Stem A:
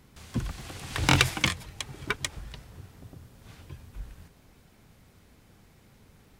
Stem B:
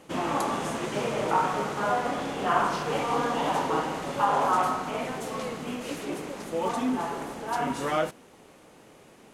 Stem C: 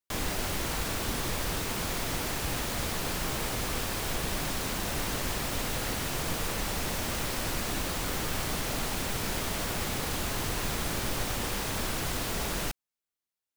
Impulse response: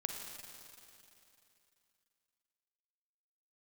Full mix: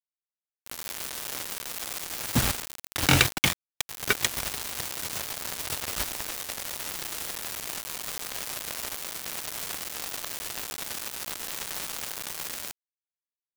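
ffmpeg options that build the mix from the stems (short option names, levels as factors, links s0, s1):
-filter_complex "[0:a]highpass=f=42:p=1,equalizer=f=1000:w=7.8:g=-13.5,bandreject=f=109.3:t=h:w=4,bandreject=f=218.6:t=h:w=4,bandreject=f=327.9:t=h:w=4,bandreject=f=437.2:t=h:w=4,bandreject=f=546.5:t=h:w=4,adelay=2000,volume=0.596[s0];[2:a]highpass=490,asoftclip=type=tanh:threshold=0.0596,volume=0.501,asplit=2[s1][s2];[s2]volume=0.119[s3];[3:a]atrim=start_sample=2205[s4];[s3][s4]afir=irnorm=-1:irlink=0[s5];[s0][s1][s5]amix=inputs=3:normalize=0,dynaudnorm=f=360:g=3:m=3.35,acrusher=bits=3:mix=0:aa=0.000001"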